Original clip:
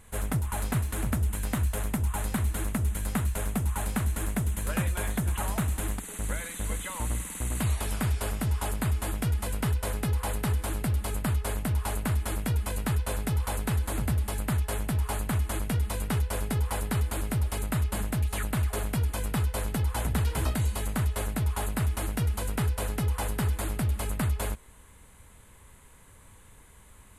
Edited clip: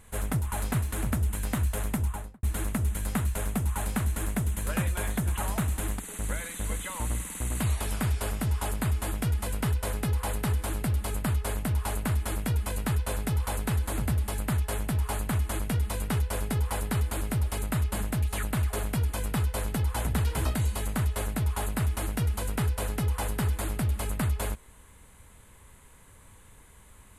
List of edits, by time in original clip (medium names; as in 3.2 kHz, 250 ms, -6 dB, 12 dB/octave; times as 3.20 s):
1.99–2.43 s: studio fade out